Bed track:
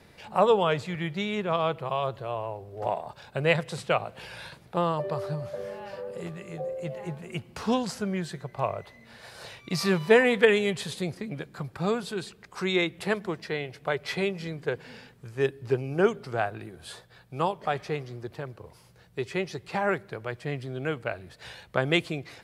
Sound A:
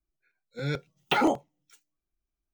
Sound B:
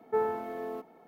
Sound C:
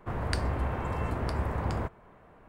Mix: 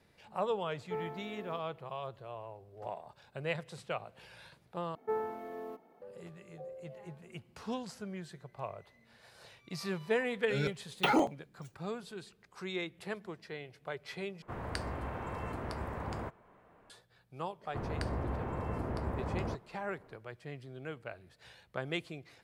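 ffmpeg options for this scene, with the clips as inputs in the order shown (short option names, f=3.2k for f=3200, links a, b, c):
-filter_complex "[2:a]asplit=2[a][b];[3:a]asplit=2[c][d];[0:a]volume=-12.5dB[e];[c]lowshelf=f=95:g=-9.5[f];[d]equalizer=f=310:w=0.3:g=8[g];[e]asplit=3[h][i][j];[h]atrim=end=4.954[k];[b]atrim=end=1.07,asetpts=PTS-STARTPTS,volume=-6dB[l];[i]atrim=start=6.016:end=14.424[m];[f]atrim=end=2.48,asetpts=PTS-STARTPTS,volume=-5.5dB[n];[j]atrim=start=16.896[o];[a]atrim=end=1.07,asetpts=PTS-STARTPTS,volume=-10.5dB,afade=t=in:d=0.004:c=hsin,afade=t=out:st=1.066:d=0.004:c=hsin,adelay=780[p];[1:a]atrim=end=2.53,asetpts=PTS-STARTPTS,volume=-4dB,afade=t=in:d=0.004:c=hsin,afade=t=out:st=2.526:d=0.004:c=hsin,adelay=9920[q];[g]atrim=end=2.48,asetpts=PTS-STARTPTS,volume=-10.5dB,afade=t=in:d=0.004:c=hsin,afade=t=out:st=2.476:d=0.004:c=hsin,adelay=17680[r];[k][l]acrossfade=d=0.004:c1=hsin:c2=hsin[s];[s][m]acrossfade=d=0.004:c1=hsin:c2=hsin[t];[t][n]acrossfade=d=0.004:c1=hsin:c2=hsin[u];[u][o]acrossfade=d=0.004:c1=hsin:c2=hsin[v];[v][p][q][r]amix=inputs=4:normalize=0"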